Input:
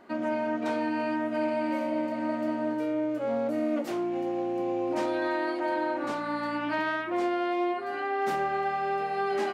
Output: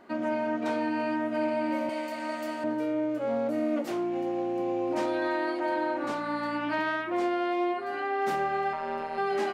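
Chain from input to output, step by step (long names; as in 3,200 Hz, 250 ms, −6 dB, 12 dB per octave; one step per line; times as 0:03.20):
0:01.89–0:02.64: spectral tilt +4 dB per octave
0:08.73–0:09.18: amplitude modulation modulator 160 Hz, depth 80%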